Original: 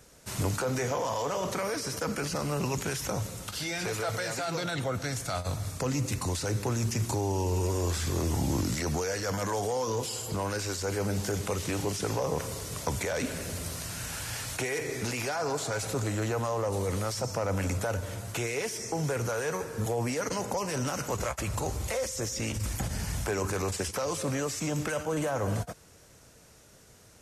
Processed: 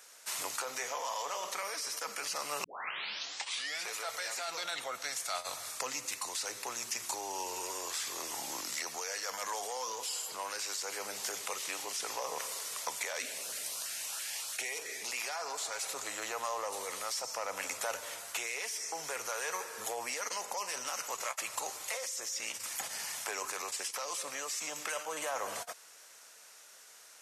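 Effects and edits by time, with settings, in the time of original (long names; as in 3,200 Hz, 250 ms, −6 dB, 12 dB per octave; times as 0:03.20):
0:02.64: tape start 1.20 s
0:13.19–0:15.12: auto-filter notch saw up 3 Hz 820–2,300 Hz
whole clip: high-pass filter 980 Hz 12 dB per octave; dynamic equaliser 1,500 Hz, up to −6 dB, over −56 dBFS, Q 6.2; speech leveller 0.5 s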